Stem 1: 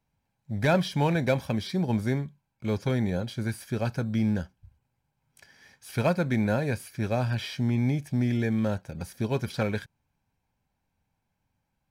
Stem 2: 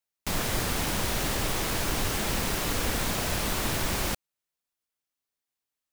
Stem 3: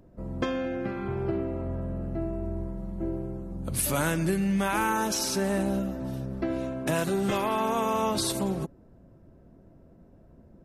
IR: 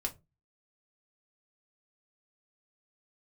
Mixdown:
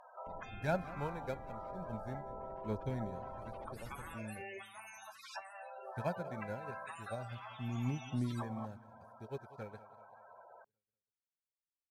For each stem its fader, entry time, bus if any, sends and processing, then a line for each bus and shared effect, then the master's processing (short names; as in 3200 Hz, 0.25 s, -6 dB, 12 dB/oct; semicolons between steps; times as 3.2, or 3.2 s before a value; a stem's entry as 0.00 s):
-10.0 dB, 0.00 s, no bus, no send, echo send -17.5 dB, bell 2800 Hz -6.5 dB 1.1 oct; phaser 0.37 Hz, delay 2.5 ms, feedback 32%; upward expander 2.5:1, over -41 dBFS
-12.0 dB, 0.00 s, bus A, no send, no echo send, spectral gate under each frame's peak -15 dB strong
+3.0 dB, 0.00 s, bus A, send -21 dB, no echo send, spectral limiter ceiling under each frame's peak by 27 dB; HPF 600 Hz 12 dB/oct; loudest bins only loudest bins 16
bus A: 0.0 dB, treble ducked by the level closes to 430 Hz, closed at -28 dBFS; compressor 2:1, threshold -53 dBFS, peak gain reduction 12.5 dB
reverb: on, RT60 0.25 s, pre-delay 3 ms
echo: feedback echo 0.191 s, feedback 49%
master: dry